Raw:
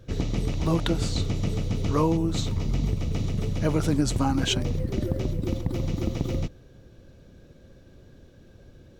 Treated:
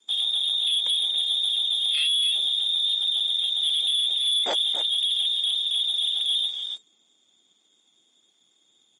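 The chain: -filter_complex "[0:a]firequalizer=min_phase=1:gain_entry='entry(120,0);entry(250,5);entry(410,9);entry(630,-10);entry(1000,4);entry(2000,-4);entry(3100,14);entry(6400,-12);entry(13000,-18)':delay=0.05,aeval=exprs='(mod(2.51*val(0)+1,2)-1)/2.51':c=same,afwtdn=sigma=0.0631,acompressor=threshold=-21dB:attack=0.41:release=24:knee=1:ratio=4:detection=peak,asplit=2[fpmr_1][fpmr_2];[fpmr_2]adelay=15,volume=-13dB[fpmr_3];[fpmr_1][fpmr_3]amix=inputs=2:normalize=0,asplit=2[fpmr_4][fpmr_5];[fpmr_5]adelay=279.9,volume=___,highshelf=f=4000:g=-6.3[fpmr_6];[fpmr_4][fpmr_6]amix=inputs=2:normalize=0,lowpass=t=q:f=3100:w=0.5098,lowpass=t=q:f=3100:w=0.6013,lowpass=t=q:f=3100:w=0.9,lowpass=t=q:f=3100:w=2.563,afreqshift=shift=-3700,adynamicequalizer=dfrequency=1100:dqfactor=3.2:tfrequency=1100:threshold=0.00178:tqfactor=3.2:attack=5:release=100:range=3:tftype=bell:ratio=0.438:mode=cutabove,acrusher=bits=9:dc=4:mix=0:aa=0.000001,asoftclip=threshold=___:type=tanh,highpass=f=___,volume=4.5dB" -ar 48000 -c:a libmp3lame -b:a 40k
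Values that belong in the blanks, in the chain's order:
-9dB, -23.5dB, 280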